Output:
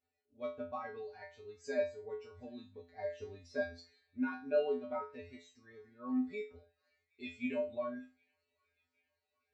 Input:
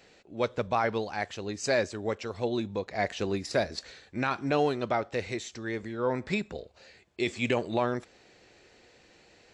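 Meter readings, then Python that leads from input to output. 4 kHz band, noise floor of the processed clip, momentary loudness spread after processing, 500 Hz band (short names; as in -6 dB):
-19.0 dB, under -85 dBFS, 17 LU, -8.5 dB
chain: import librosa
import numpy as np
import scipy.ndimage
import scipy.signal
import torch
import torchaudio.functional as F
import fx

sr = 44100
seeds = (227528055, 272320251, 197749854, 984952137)

y = fx.comb_fb(x, sr, f0_hz=85.0, decay_s=0.43, harmonics='odd', damping=0.0, mix_pct=100)
y = fx.echo_wet_highpass(y, sr, ms=769, feedback_pct=73, hz=1500.0, wet_db=-20.0)
y = fx.spectral_expand(y, sr, expansion=1.5)
y = y * 10.0 ** (6.0 / 20.0)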